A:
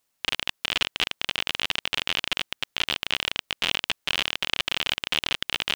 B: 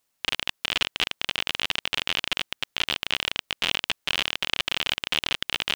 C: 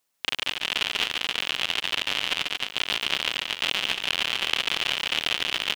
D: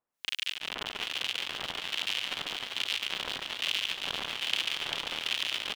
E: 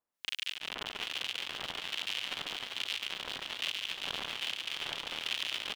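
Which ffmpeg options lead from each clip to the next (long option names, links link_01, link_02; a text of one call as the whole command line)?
ffmpeg -i in.wav -af anull out.wav
ffmpeg -i in.wav -filter_complex "[0:a]lowshelf=frequency=120:gain=-8,asplit=2[link_01][link_02];[link_02]aecho=0:1:140|231|290.2|328.6|353.6:0.631|0.398|0.251|0.158|0.1[link_03];[link_01][link_03]amix=inputs=2:normalize=0,volume=-1dB" out.wav
ffmpeg -i in.wav -filter_complex "[0:a]acrossover=split=1700[link_01][link_02];[link_01]aeval=exprs='val(0)*(1-1/2+1/2*cos(2*PI*1.2*n/s))':channel_layout=same[link_03];[link_02]aeval=exprs='val(0)*(1-1/2-1/2*cos(2*PI*1.2*n/s))':channel_layout=same[link_04];[link_03][link_04]amix=inputs=2:normalize=0,asplit=9[link_05][link_06][link_07][link_08][link_09][link_10][link_11][link_12][link_13];[link_06]adelay=395,afreqshift=96,volume=-5dB[link_14];[link_07]adelay=790,afreqshift=192,volume=-9.9dB[link_15];[link_08]adelay=1185,afreqshift=288,volume=-14.8dB[link_16];[link_09]adelay=1580,afreqshift=384,volume=-19.6dB[link_17];[link_10]adelay=1975,afreqshift=480,volume=-24.5dB[link_18];[link_11]adelay=2370,afreqshift=576,volume=-29.4dB[link_19];[link_12]adelay=2765,afreqshift=672,volume=-34.3dB[link_20];[link_13]adelay=3160,afreqshift=768,volume=-39.2dB[link_21];[link_05][link_14][link_15][link_16][link_17][link_18][link_19][link_20][link_21]amix=inputs=9:normalize=0,volume=-3.5dB" out.wav
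ffmpeg -i in.wav -af "alimiter=limit=-16dB:level=0:latency=1:release=295,volume=-3dB" out.wav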